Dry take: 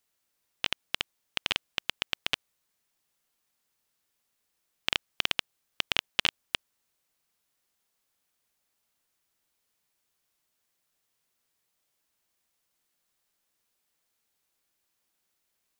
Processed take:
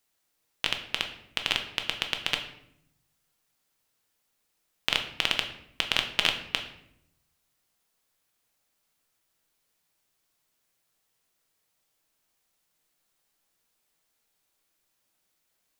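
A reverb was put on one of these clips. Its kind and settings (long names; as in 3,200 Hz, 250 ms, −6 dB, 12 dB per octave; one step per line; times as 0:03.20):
rectangular room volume 180 cubic metres, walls mixed, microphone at 0.59 metres
level +1.5 dB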